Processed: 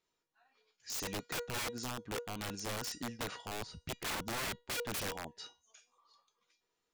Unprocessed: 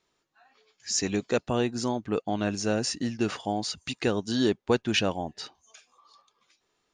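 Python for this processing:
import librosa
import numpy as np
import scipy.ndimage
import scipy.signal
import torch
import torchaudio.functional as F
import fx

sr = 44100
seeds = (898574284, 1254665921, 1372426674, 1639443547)

y = fx.tilt_eq(x, sr, slope=-4.0, at=(3.51, 4.6))
y = fx.comb_fb(y, sr, f0_hz=480.0, decay_s=0.27, harmonics='all', damping=0.0, mix_pct=80)
y = (np.mod(10.0 ** (34.0 / 20.0) * y + 1.0, 2.0) - 1.0) / 10.0 ** (34.0 / 20.0)
y = F.gain(torch.from_numpy(y), 1.5).numpy()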